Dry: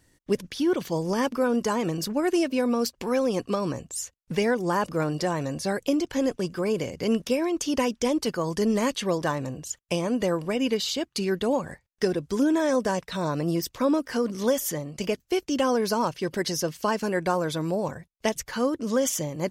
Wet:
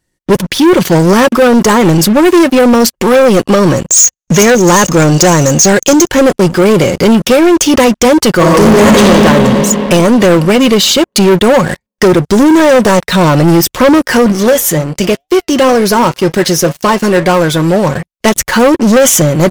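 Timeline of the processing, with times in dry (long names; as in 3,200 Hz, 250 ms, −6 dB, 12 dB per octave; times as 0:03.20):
0:03.88–0:06.09: low-pass with resonance 6,500 Hz, resonance Q 14
0:08.35–0:09.05: thrown reverb, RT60 2.8 s, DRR −4 dB
0:14.32–0:17.95: flanger 2 Hz, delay 6 ms, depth 2.6 ms, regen +81%
whole clip: comb filter 5.5 ms, depth 32%; dynamic equaliser 4,900 Hz, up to −5 dB, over −46 dBFS, Q 2; leveller curve on the samples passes 5; level +5.5 dB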